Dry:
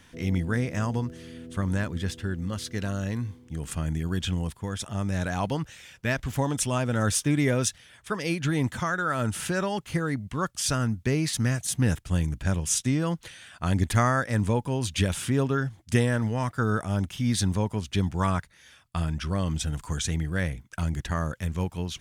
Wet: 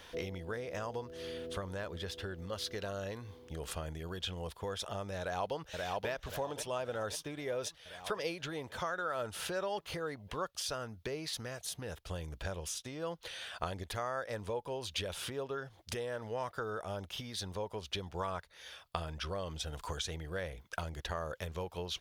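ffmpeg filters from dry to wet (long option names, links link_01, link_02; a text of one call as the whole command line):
ffmpeg -i in.wav -filter_complex "[0:a]asplit=2[link_01][link_02];[link_02]afade=type=in:start_time=5.2:duration=0.01,afade=type=out:start_time=6.09:duration=0.01,aecho=0:1:530|1060|1590|2120|2650|3180|3710|4240|4770:0.354813|0.230629|0.149909|0.0974406|0.0633364|0.0411687|0.0267596|0.0173938|0.0113059[link_03];[link_01][link_03]amix=inputs=2:normalize=0,lowshelf=frequency=120:gain=-6.5,acompressor=threshold=-37dB:ratio=10,equalizer=frequency=125:width_type=o:width=1:gain=-9,equalizer=frequency=250:width_type=o:width=1:gain=-12,equalizer=frequency=500:width_type=o:width=1:gain=7,equalizer=frequency=2000:width_type=o:width=1:gain=-5,equalizer=frequency=4000:width_type=o:width=1:gain=4,equalizer=frequency=8000:width_type=o:width=1:gain=-10,volume=5dB" out.wav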